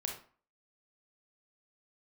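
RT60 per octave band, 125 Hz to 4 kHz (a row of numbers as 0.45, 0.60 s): 0.40, 0.45, 0.40, 0.45, 0.35, 0.30 s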